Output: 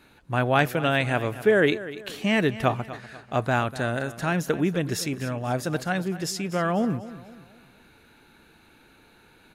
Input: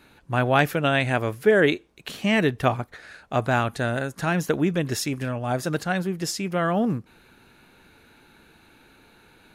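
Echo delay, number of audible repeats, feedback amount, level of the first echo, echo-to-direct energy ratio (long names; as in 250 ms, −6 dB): 245 ms, 3, 40%, −15.5 dB, −14.5 dB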